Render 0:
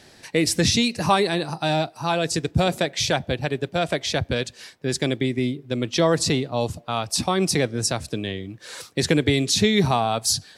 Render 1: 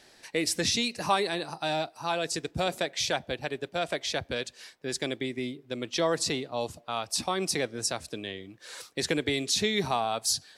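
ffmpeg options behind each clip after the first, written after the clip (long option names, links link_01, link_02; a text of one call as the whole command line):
ffmpeg -i in.wav -af "equalizer=frequency=110:width=0.56:gain=-10.5,volume=-5.5dB" out.wav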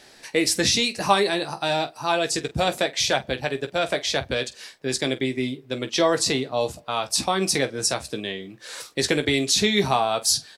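ffmpeg -i in.wav -af "aecho=1:1:15|47:0.398|0.168,volume=6dB" out.wav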